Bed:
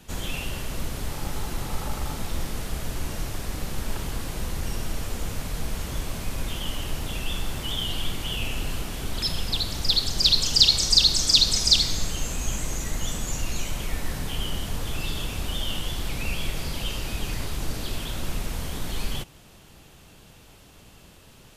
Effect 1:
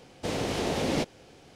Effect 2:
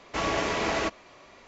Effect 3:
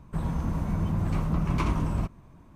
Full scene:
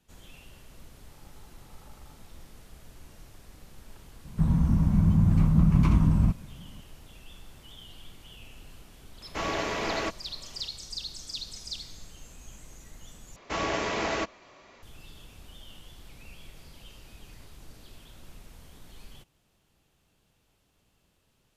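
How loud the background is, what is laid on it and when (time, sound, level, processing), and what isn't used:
bed -19.5 dB
4.25 s: add 3 -3.5 dB + resonant low shelf 290 Hz +8.5 dB, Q 1.5
9.21 s: add 2 -3 dB
13.36 s: replace with 2 -2 dB
not used: 1

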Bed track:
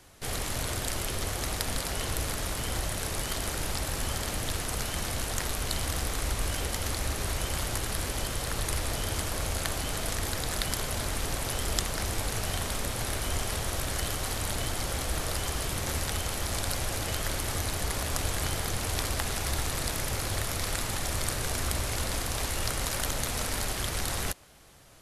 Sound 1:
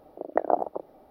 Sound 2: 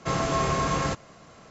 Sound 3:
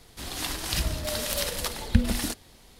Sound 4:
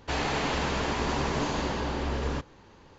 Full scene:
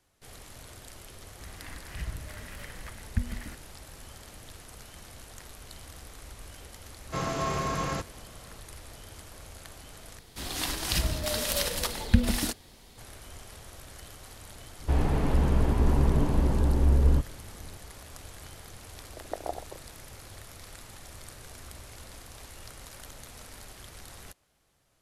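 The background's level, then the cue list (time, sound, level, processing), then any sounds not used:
bed track -15.5 dB
1.22 s: add 3 -6.5 dB + FFT filter 120 Hz 0 dB, 550 Hz -14 dB, 2 kHz 0 dB, 3.8 kHz -19 dB
7.07 s: add 2 -5 dB
10.19 s: replace with 3
14.80 s: add 4 -6 dB + tilt EQ -4.5 dB/octave
18.96 s: add 1 -11.5 dB

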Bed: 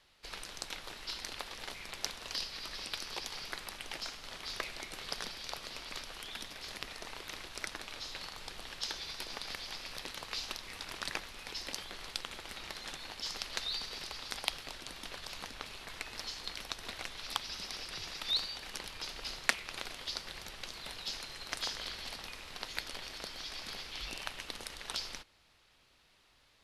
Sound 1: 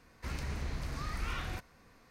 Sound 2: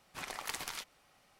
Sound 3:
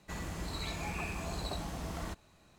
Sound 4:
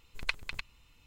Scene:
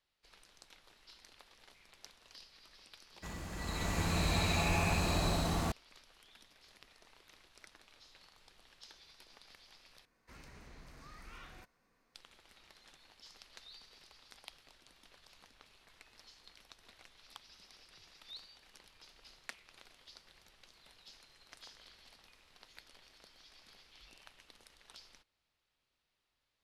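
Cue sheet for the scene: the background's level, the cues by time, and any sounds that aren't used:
bed -17.5 dB
3.14 s: add 3 -4.5 dB + swelling reverb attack 710 ms, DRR -11 dB
10.05 s: replace with 1 -13 dB + peaking EQ 76 Hz -10 dB 1.7 oct
not used: 2, 4

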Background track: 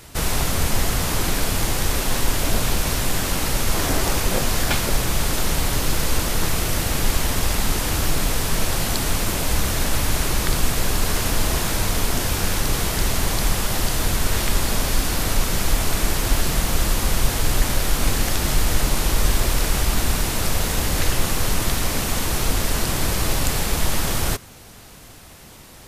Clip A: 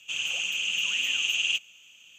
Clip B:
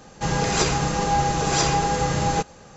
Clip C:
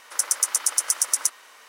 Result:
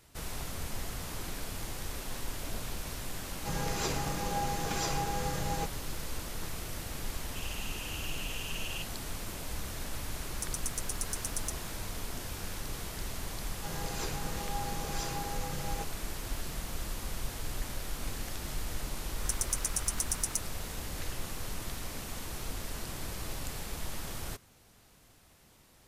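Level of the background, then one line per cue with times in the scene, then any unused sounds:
background track -17.5 dB
3.24 s: add B -13 dB
7.26 s: add A -15.5 dB
10.23 s: add C -16 dB
13.42 s: add B -17.5 dB
19.10 s: add C -11 dB

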